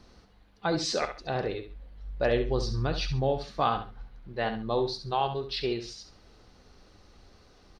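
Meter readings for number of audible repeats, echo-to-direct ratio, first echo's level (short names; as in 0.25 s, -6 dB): 2, -9.0 dB, -9.5 dB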